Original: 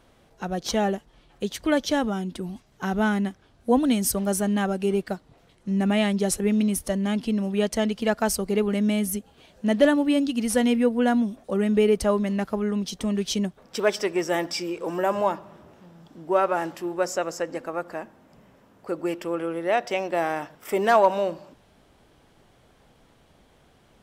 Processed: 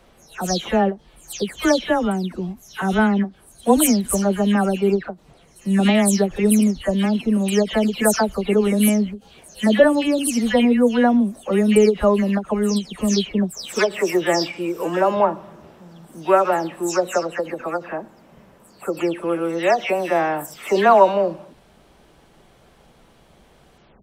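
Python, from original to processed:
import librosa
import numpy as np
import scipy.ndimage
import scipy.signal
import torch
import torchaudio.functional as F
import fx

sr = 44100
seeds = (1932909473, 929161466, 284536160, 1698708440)

y = fx.spec_delay(x, sr, highs='early', ms=242)
y = fx.end_taper(y, sr, db_per_s=290.0)
y = y * 10.0 ** (6.0 / 20.0)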